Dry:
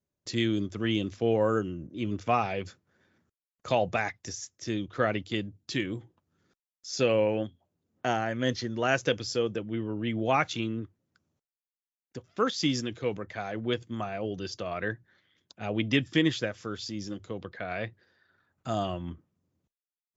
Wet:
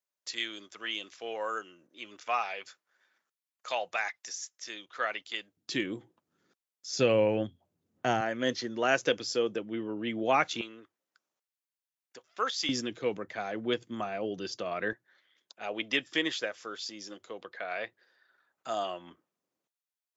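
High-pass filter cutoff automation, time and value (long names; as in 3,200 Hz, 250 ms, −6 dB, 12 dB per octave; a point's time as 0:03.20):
940 Hz
from 0:05.57 220 Hz
from 0:06.89 79 Hz
from 0:08.21 250 Hz
from 0:10.61 710 Hz
from 0:12.69 210 Hz
from 0:14.93 510 Hz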